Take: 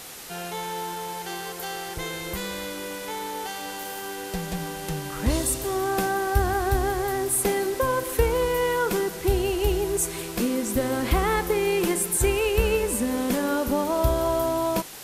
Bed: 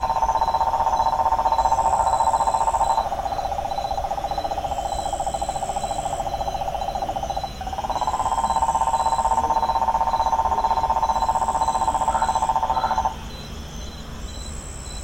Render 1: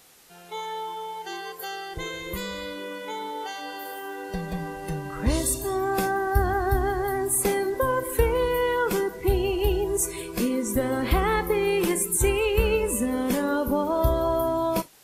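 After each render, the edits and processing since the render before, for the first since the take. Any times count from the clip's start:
noise reduction from a noise print 14 dB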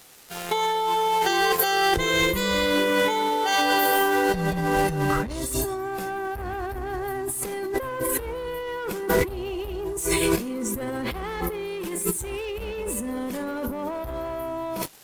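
leveller curve on the samples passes 3
compressor whose output falls as the input rises −27 dBFS, ratio −1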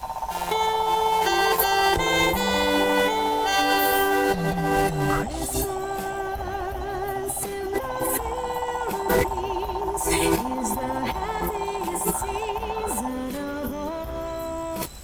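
mix in bed −9.5 dB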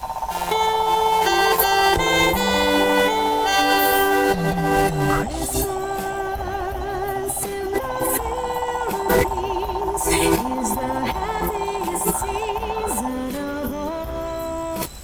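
level +3.5 dB

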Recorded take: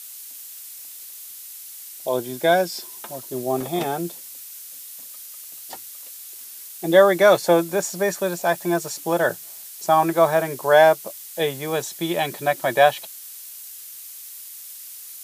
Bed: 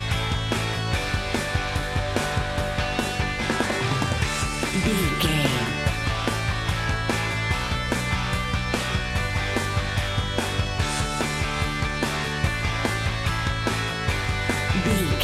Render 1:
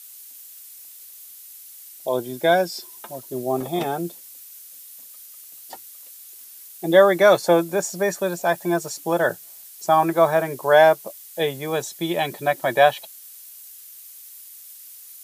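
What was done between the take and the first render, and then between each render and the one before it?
broadband denoise 6 dB, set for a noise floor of −39 dBFS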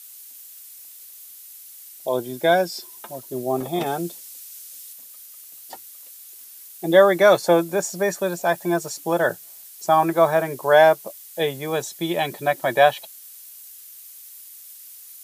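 0:03.86–0:04.93: parametric band 6,000 Hz +4.5 dB 2.5 octaves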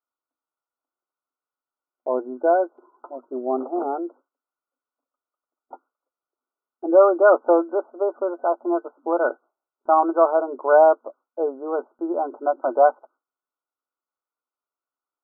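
brick-wall band-pass 240–1,500 Hz
noise gate with hold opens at −51 dBFS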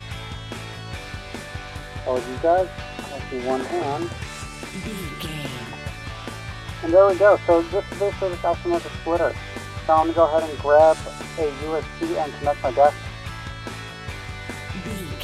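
mix in bed −8.5 dB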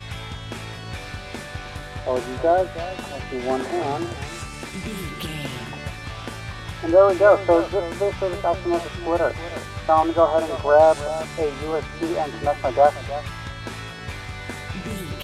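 slap from a distant wall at 54 metres, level −14 dB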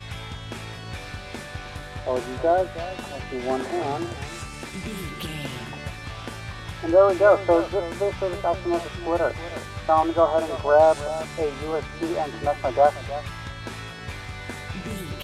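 level −2 dB

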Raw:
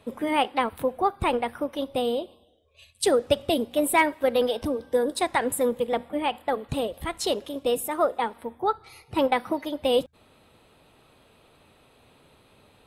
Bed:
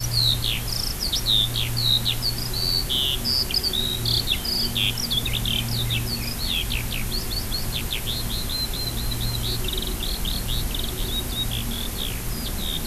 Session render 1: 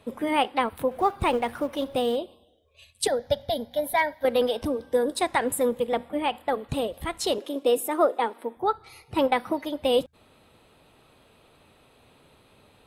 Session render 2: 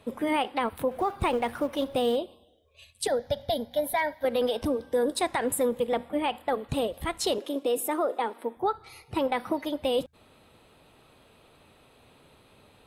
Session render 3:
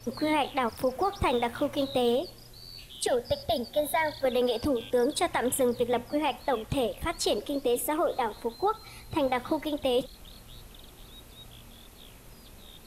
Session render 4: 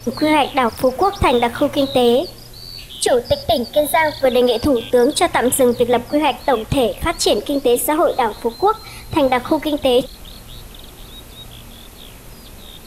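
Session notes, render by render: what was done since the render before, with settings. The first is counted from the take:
0:00.91–0:02.16: mu-law and A-law mismatch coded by mu; 0:03.07–0:04.25: phaser with its sweep stopped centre 1,800 Hz, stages 8; 0:07.38–0:08.57: high-pass with resonance 310 Hz, resonance Q 1.6
brickwall limiter −17.5 dBFS, peak gain reduction 8.5 dB
mix in bed −23 dB
level +12 dB

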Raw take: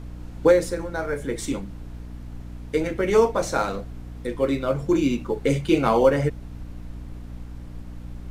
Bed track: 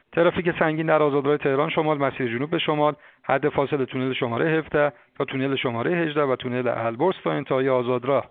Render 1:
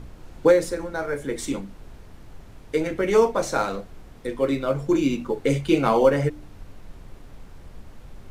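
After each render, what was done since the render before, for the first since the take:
hum removal 60 Hz, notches 5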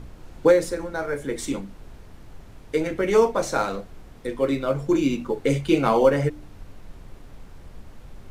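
no processing that can be heard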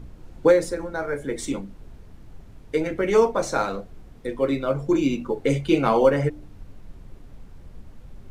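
broadband denoise 6 dB, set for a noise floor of −45 dBFS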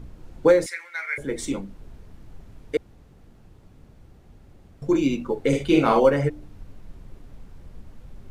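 0:00.66–0:01.18: high-pass with resonance 2,100 Hz, resonance Q 12
0:02.77–0:04.82: fill with room tone
0:05.48–0:06.00: double-tracking delay 47 ms −3.5 dB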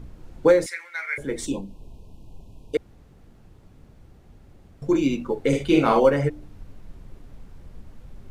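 0:01.46–0:02.75: linear-phase brick-wall band-stop 1,100–2,400 Hz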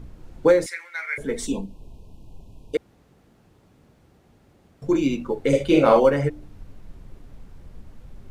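0:01.20–0:01.66: comb filter 4.5 ms
0:02.76–0:04.84: high-pass filter 190 Hz 6 dB per octave
0:05.53–0:05.97: parametric band 560 Hz +14.5 dB 0.24 octaves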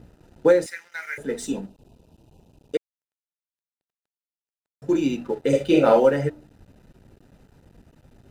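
dead-zone distortion −46.5 dBFS
notch comb filter 1,100 Hz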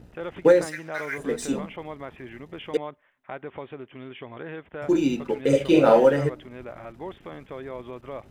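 mix in bed track −15.5 dB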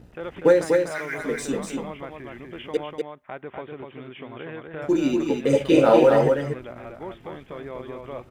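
single-tap delay 245 ms −4 dB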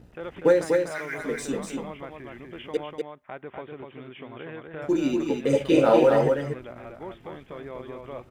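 level −2.5 dB

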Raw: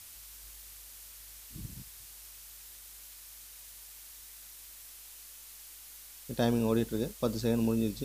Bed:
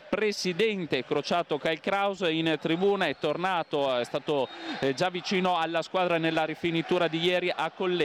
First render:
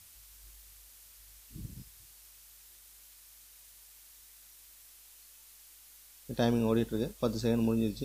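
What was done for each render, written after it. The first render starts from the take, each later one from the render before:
noise reduction from a noise print 6 dB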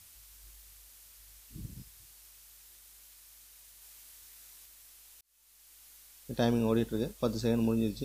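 0:03.79–0:04.66: double-tracking delay 26 ms −2 dB
0:05.21–0:05.83: fade in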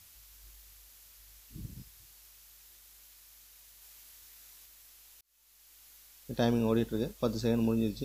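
parametric band 9,000 Hz −7 dB 0.25 octaves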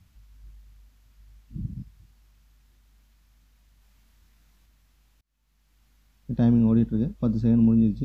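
low-pass filter 1,100 Hz 6 dB per octave
low shelf with overshoot 300 Hz +10 dB, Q 1.5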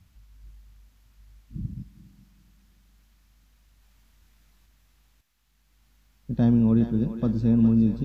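feedback echo with a high-pass in the loop 412 ms, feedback 75%, high-pass 590 Hz, level −8.5 dB
spring reverb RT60 3.2 s, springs 45 ms, DRR 18.5 dB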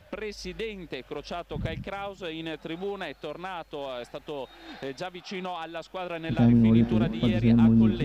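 mix in bed −8.5 dB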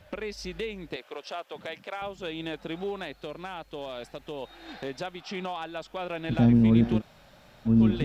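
0:00.96–0:02.02: high-pass filter 480 Hz
0:03.00–0:04.42: parametric band 960 Hz −3 dB 2.7 octaves
0:06.99–0:07.68: fill with room tone, crossfade 0.06 s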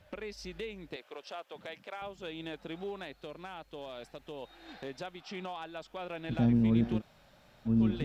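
level −6.5 dB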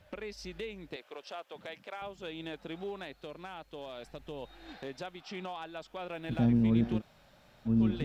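0:04.06–0:04.73: low-shelf EQ 150 Hz +10 dB
0:06.13–0:06.62: running median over 5 samples

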